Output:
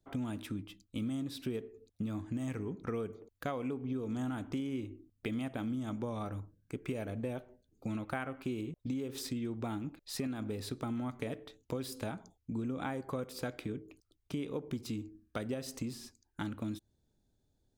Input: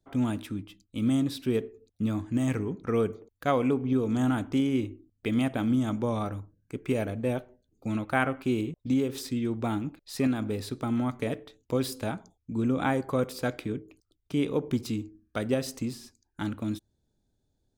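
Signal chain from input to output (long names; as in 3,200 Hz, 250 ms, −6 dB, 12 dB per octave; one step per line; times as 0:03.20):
downward compressor 5 to 1, threshold −34 dBFS, peak gain reduction 13 dB
level −1 dB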